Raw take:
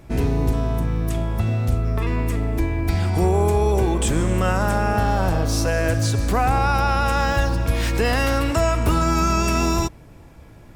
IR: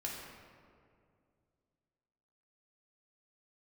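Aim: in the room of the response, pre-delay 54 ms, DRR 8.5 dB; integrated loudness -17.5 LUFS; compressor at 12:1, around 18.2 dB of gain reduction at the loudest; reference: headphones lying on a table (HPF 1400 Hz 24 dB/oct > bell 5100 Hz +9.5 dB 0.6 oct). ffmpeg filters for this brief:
-filter_complex "[0:a]acompressor=threshold=-33dB:ratio=12,asplit=2[a][b];[1:a]atrim=start_sample=2205,adelay=54[c];[b][c]afir=irnorm=-1:irlink=0,volume=-9.5dB[d];[a][d]amix=inputs=2:normalize=0,highpass=f=1.4k:w=0.5412,highpass=f=1.4k:w=1.3066,equalizer=f=5.1k:t=o:w=0.6:g=9.5,volume=25dB"

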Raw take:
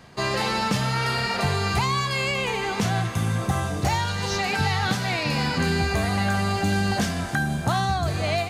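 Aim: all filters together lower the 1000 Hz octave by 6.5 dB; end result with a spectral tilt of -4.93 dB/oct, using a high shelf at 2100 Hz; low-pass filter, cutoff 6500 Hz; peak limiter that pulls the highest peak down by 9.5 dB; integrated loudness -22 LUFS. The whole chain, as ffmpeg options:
-af "lowpass=6.5k,equalizer=f=1k:t=o:g=-7.5,highshelf=f=2.1k:g=-6,volume=9dB,alimiter=limit=-13.5dB:level=0:latency=1"

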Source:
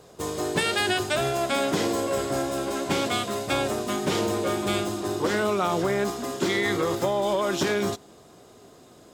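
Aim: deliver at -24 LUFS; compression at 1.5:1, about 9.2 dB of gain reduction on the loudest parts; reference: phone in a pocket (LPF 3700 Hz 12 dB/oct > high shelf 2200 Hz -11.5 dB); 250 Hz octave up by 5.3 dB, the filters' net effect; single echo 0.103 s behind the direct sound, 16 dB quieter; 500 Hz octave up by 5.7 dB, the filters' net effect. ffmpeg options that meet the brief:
-af "equalizer=f=250:t=o:g=5,equalizer=f=500:t=o:g=6.5,acompressor=threshold=-42dB:ratio=1.5,lowpass=3.7k,highshelf=f=2.2k:g=-11.5,aecho=1:1:103:0.158,volume=7dB"

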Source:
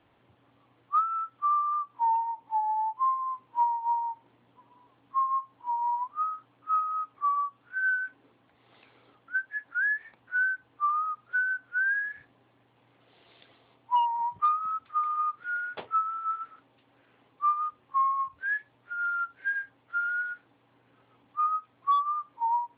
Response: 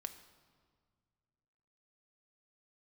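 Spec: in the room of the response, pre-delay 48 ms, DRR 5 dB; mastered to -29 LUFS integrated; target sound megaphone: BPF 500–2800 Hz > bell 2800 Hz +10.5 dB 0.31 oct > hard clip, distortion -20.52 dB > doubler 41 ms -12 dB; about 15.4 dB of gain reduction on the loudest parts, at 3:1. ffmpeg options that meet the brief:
-filter_complex "[0:a]acompressor=threshold=-43dB:ratio=3,asplit=2[a][b];[1:a]atrim=start_sample=2205,adelay=48[c];[b][c]afir=irnorm=-1:irlink=0,volume=-2dB[d];[a][d]amix=inputs=2:normalize=0,highpass=500,lowpass=2.8k,equalizer=f=2.8k:t=o:w=0.31:g=10.5,asoftclip=type=hard:threshold=-35dB,asplit=2[e][f];[f]adelay=41,volume=-12dB[g];[e][g]amix=inputs=2:normalize=0,volume=12dB"

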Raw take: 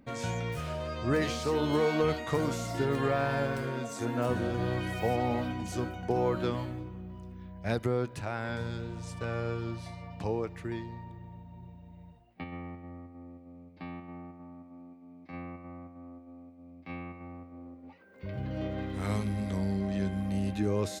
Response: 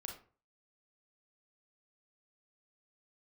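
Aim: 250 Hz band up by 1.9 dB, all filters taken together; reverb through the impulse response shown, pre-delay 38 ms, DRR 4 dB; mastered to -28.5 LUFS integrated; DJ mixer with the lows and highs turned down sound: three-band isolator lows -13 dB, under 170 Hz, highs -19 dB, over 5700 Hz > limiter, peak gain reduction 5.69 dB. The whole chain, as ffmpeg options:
-filter_complex "[0:a]equalizer=f=250:t=o:g=4.5,asplit=2[a][b];[1:a]atrim=start_sample=2205,adelay=38[c];[b][c]afir=irnorm=-1:irlink=0,volume=-1dB[d];[a][d]amix=inputs=2:normalize=0,acrossover=split=170 5700:gain=0.224 1 0.112[e][f][g];[e][f][g]amix=inputs=3:normalize=0,volume=4.5dB,alimiter=limit=-15.5dB:level=0:latency=1"

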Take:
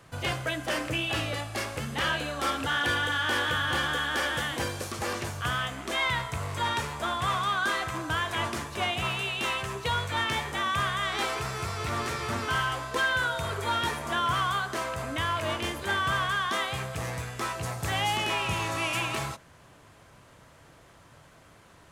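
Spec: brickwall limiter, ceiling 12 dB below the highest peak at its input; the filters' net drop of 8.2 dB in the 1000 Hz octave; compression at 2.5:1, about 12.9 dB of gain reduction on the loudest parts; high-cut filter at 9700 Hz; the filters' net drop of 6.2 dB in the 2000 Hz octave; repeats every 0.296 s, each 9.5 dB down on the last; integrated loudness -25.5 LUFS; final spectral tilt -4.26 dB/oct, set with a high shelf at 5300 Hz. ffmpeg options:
-af "lowpass=9.7k,equalizer=f=1k:t=o:g=-9,equalizer=f=2k:t=o:g=-4,highshelf=f=5.3k:g=-5.5,acompressor=threshold=-49dB:ratio=2.5,alimiter=level_in=19.5dB:limit=-24dB:level=0:latency=1,volume=-19.5dB,aecho=1:1:296|592|888|1184:0.335|0.111|0.0365|0.012,volume=25.5dB"

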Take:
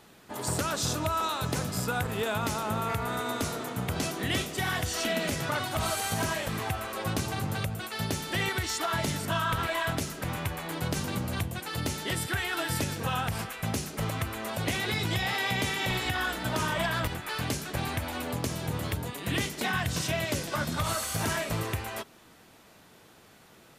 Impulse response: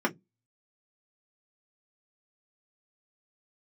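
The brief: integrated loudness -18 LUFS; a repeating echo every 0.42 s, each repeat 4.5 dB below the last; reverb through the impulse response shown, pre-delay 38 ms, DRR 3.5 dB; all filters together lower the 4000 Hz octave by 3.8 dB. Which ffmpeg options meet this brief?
-filter_complex "[0:a]equalizer=f=4k:t=o:g=-5,aecho=1:1:420|840|1260|1680|2100|2520|2940|3360|3780:0.596|0.357|0.214|0.129|0.0772|0.0463|0.0278|0.0167|0.01,asplit=2[a][b];[1:a]atrim=start_sample=2205,adelay=38[c];[b][c]afir=irnorm=-1:irlink=0,volume=-14dB[d];[a][d]amix=inputs=2:normalize=0,volume=10dB"

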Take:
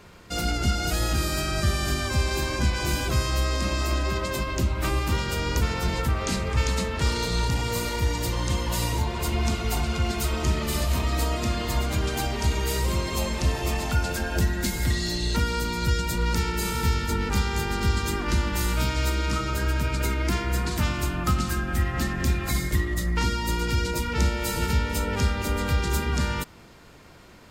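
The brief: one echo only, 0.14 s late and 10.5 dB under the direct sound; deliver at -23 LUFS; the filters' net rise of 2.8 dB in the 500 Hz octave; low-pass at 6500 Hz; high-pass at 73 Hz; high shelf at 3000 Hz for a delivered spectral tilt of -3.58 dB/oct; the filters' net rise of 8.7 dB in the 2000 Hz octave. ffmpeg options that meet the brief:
-af "highpass=73,lowpass=6.5k,equalizer=f=500:t=o:g=3,equalizer=f=2k:t=o:g=8.5,highshelf=f=3k:g=6,aecho=1:1:140:0.299"

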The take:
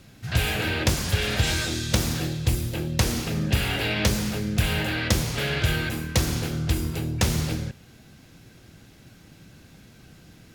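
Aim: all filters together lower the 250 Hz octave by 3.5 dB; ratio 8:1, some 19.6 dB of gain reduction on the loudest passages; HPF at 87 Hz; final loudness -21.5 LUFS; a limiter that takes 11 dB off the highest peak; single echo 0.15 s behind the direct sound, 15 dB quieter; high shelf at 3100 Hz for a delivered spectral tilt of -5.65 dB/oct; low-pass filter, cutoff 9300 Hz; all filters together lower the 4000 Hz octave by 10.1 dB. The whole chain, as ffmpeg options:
-af "highpass=87,lowpass=9.3k,equalizer=f=250:t=o:g=-5,highshelf=f=3.1k:g=-7.5,equalizer=f=4k:t=o:g=-8,acompressor=threshold=-41dB:ratio=8,alimiter=level_in=13dB:limit=-24dB:level=0:latency=1,volume=-13dB,aecho=1:1:150:0.178,volume=26dB"

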